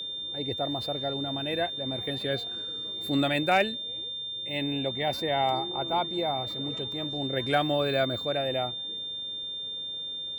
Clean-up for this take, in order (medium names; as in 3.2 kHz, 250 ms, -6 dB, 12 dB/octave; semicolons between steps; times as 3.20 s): clip repair -14 dBFS; band-stop 3.6 kHz, Q 30